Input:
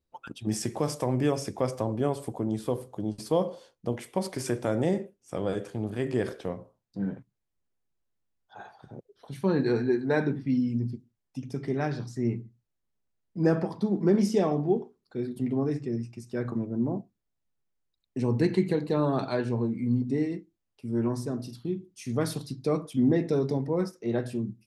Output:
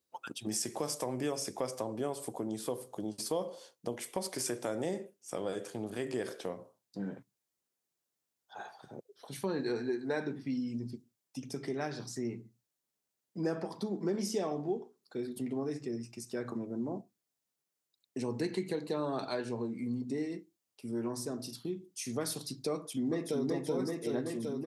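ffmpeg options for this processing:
-filter_complex "[0:a]asplit=2[s0][s1];[s1]afade=t=in:st=22.74:d=0.01,afade=t=out:st=23.48:d=0.01,aecho=0:1:380|760|1140|1520|1900|2280|2660|3040|3420|3800|4180|4560:0.841395|0.588977|0.412284|0.288599|0.202019|0.141413|0.0989893|0.0692925|0.0485048|0.0339533|0.0237673|0.0166371[s2];[s0][s2]amix=inputs=2:normalize=0,highpass=120,bass=f=250:g=-7,treble=f=4000:g=8,acompressor=threshold=0.0158:ratio=2"

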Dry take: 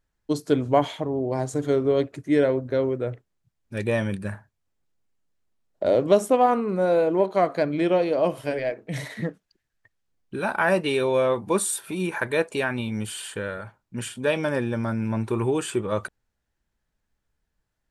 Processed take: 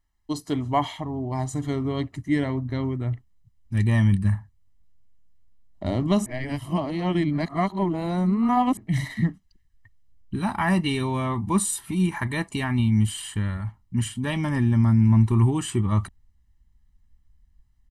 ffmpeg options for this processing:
-filter_complex "[0:a]asplit=3[s0][s1][s2];[s0]atrim=end=6.262[s3];[s1]atrim=start=6.258:end=8.772,asetpts=PTS-STARTPTS,areverse[s4];[s2]atrim=start=8.768[s5];[s3][s4]acrossfade=d=0.004:c1=hsin:c2=hsin[s6];[s6][s5]acrossfade=d=0.004:c1=hsin:c2=hsin,equalizer=f=140:w=1.8:g=-8,aecho=1:1:1:0.79,asubboost=boost=7.5:cutoff=180,volume=0.794"

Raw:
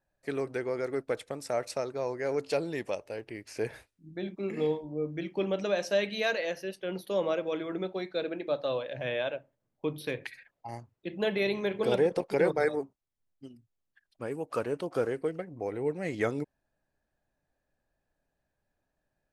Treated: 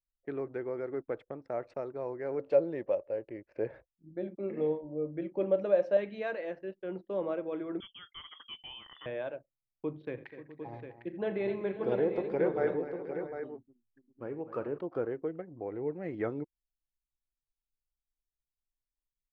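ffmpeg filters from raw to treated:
-filter_complex "[0:a]asettb=1/sr,asplit=3[s0][s1][s2];[s0]atrim=end=2.394[s3];[s1]atrim=start=2.39:end=5.97,asetpts=PTS-STARTPTS,afade=t=in:d=0.004:c=qsin,afade=t=out:st=3.576:d=0.004:c=qsin,equalizer=f=550:t=o:w=0.25:g=13[s4];[s2]atrim=start=5.966[s5];[s3][s4]acrossfade=d=0.004:c1=hsin:c2=qsin[s6];[s6][s5]acrossfade=d=0.004:c1=qsin:c2=hsin,asettb=1/sr,asplit=3[s7][s8][s9];[s7]atrim=end=7.804[s10];[s8]atrim=start=7.8:end=9.06,asetpts=PTS-STARTPTS,afade=t=in:d=0.004:c=qsin,afade=t=out:st=1.256:d=0.004:c=qsin,lowpass=f=3100:t=q:w=0.5098,lowpass=f=3100:t=q:w=0.6013,lowpass=f=3100:t=q:w=0.9,lowpass=f=3100:t=q:w=2.563,afreqshift=-3600[s11];[s9]atrim=start=9.056[s12];[s10][s11]acrossfade=d=0.004:c1=hsin:c2=qsin[s13];[s13][s12]acrossfade=d=0.004:c1=qsin:c2=hsin,asplit=3[s14][s15][s16];[s14]afade=t=out:st=10.16:d=0.02[s17];[s15]aecho=1:1:41|84|250|536|650|753:0.188|0.168|0.237|0.188|0.141|0.376,afade=t=in:st=10.16:d=0.02,afade=t=out:st=14.77:d=0.02[s18];[s16]afade=t=in:st=14.77:d=0.02[s19];[s17][s18][s19]amix=inputs=3:normalize=0,lowpass=1600,anlmdn=0.000398,equalizer=f=340:t=o:w=0.34:g=5,volume=0.562"

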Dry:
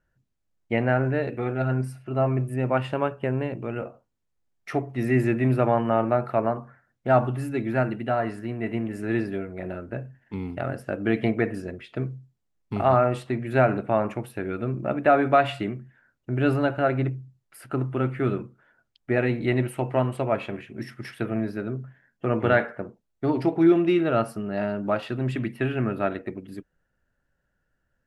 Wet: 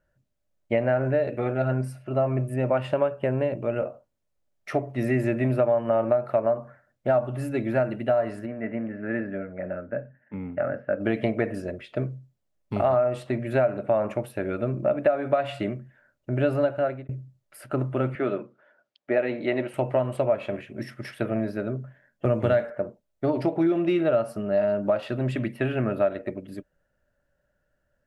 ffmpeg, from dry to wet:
-filter_complex "[0:a]asplit=3[s0][s1][s2];[s0]afade=t=out:st=8.45:d=0.02[s3];[s1]highpass=100,equalizer=f=120:t=q:w=4:g=-8,equalizer=f=370:t=q:w=4:g=-9,equalizer=f=690:t=q:w=4:g=-5,equalizer=f=1000:t=q:w=4:g=-7,equalizer=f=1600:t=q:w=4:g=3,lowpass=f=2100:w=0.5412,lowpass=f=2100:w=1.3066,afade=t=in:st=8.45:d=0.02,afade=t=out:st=10.99:d=0.02[s4];[s2]afade=t=in:st=10.99:d=0.02[s5];[s3][s4][s5]amix=inputs=3:normalize=0,asettb=1/sr,asplit=3[s6][s7][s8];[s6]atrim=end=18.154[s9];[s7]atrim=start=18.15:end=19.74,asetpts=PTS-STARTPTS,afade=t=in:d=0.004:c=qsin,afade=t=out:st=1.586:d=0.004:c=qsin,highpass=260,lowpass=5100[s10];[s8]atrim=start=19.736[s11];[s9][s10]acrossfade=d=0.004:c1=hsin:c2=qsin[s12];[s12][s11]acrossfade=d=0.004:c1=qsin:c2=hsin,asettb=1/sr,asplit=3[s13][s14][s15];[s13]atrim=end=22.254[s16];[s14]atrim=start=22.25:end=22.7,asetpts=PTS-STARTPTS,afade=t=in:d=0.004:c=qsin,afade=t=out:st=0.446:d=0.004:c=qsin,bass=f=250:g=8,treble=f=4000:g=12[s17];[s15]atrim=start=22.696[s18];[s16][s17]acrossfade=d=0.004:c1=hsin:c2=qsin[s19];[s19][s18]acrossfade=d=0.004:c1=qsin:c2=hsin,asplit=2[s20][s21];[s20]atrim=end=17.09,asetpts=PTS-STARTPTS,afade=t=out:st=16.63:d=0.46[s22];[s21]atrim=start=17.09,asetpts=PTS-STARTPTS,afade=t=in:d=0.004:c=hsin[s23];[s22][s23]concat=n=2:v=0:a=1,equalizer=f=590:t=o:w=0.23:g=14,acompressor=threshold=0.112:ratio=6"

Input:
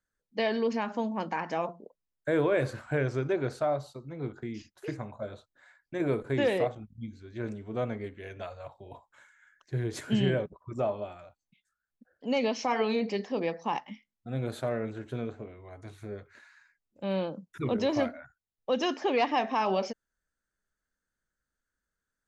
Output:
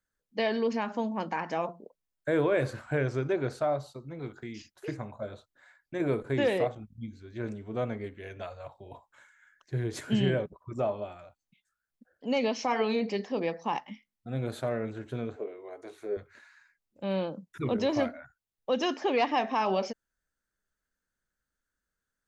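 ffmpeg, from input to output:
-filter_complex "[0:a]asettb=1/sr,asplit=3[s0][s1][s2];[s0]atrim=end=4.194[s3];[s1]atrim=start=4.19:end=4.72,asetpts=PTS-STARTPTS,afade=t=in:d=0.004:c=qsin,afade=t=out:st=0.526:d=0.004:c=qsin,tiltshelf=f=1200:g=-4[s4];[s2]atrim=start=4.716[s5];[s3][s4]acrossfade=d=0.004:c1=hsin:c2=qsin[s6];[s6][s5]acrossfade=d=0.004:c1=qsin:c2=hsin,asettb=1/sr,asplit=3[s7][s8][s9];[s7]atrim=end=15.364[s10];[s8]atrim=start=15.36:end=16.17,asetpts=PTS-STARTPTS,afade=t=in:d=0.004:c=qsin,afade=t=out:st=0.806:d=0.004:c=qsin,highpass=f=410:t=q:w=2.8[s11];[s9]atrim=start=16.166[s12];[s10][s11]acrossfade=d=0.004:c1=hsin:c2=qsin[s13];[s13][s12]acrossfade=d=0.004:c1=qsin:c2=hsin"

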